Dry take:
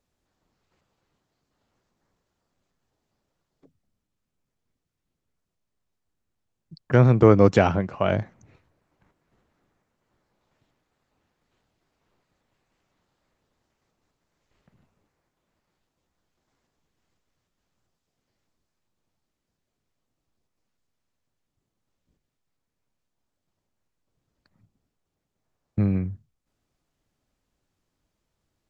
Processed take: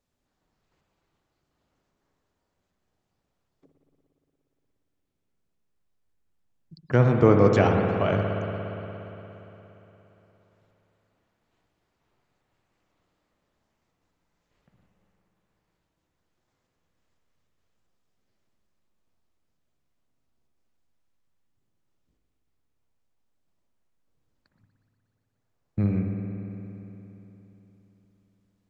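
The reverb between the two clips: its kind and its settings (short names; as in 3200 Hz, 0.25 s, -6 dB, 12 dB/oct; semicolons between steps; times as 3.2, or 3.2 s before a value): spring tank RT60 3.6 s, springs 58 ms, chirp 70 ms, DRR 2 dB; gain -3 dB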